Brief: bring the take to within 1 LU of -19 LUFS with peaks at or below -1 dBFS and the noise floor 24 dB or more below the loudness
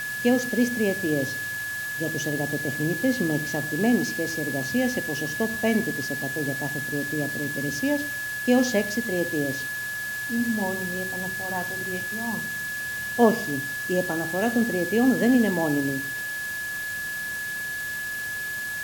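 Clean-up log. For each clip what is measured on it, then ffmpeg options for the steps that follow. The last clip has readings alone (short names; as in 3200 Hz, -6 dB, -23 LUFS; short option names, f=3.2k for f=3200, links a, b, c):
steady tone 1700 Hz; tone level -29 dBFS; noise floor -31 dBFS; noise floor target -50 dBFS; loudness -25.5 LUFS; peak -5.0 dBFS; loudness target -19.0 LUFS
-> -af "bandreject=f=1.7k:w=30"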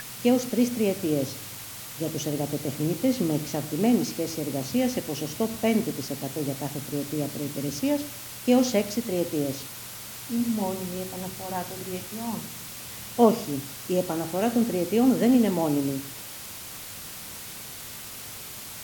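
steady tone none; noise floor -40 dBFS; noise floor target -52 dBFS
-> -af "afftdn=nr=12:nf=-40"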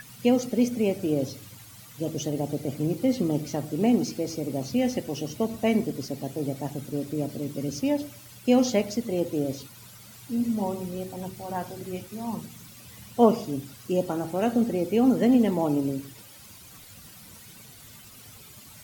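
noise floor -48 dBFS; noise floor target -51 dBFS
-> -af "afftdn=nr=6:nf=-48"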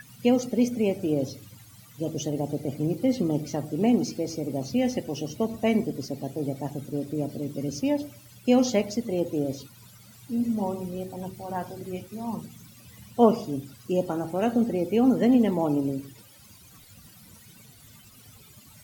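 noise floor -52 dBFS; loudness -27.0 LUFS; peak -5.5 dBFS; loudness target -19.0 LUFS
-> -af "volume=8dB,alimiter=limit=-1dB:level=0:latency=1"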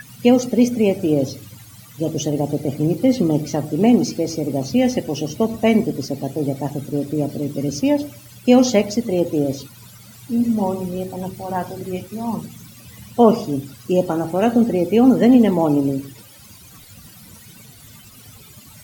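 loudness -19.0 LUFS; peak -1.0 dBFS; noise floor -44 dBFS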